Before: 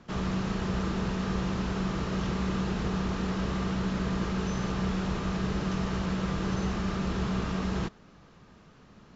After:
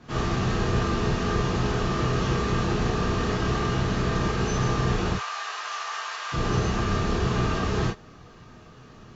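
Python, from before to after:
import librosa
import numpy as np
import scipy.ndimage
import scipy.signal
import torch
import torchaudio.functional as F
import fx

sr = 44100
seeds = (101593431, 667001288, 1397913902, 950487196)

y = fx.highpass(x, sr, hz=850.0, slope=24, at=(5.12, 6.32), fade=0.02)
y = fx.rev_gated(y, sr, seeds[0], gate_ms=80, shape='flat', drr_db=-6.0)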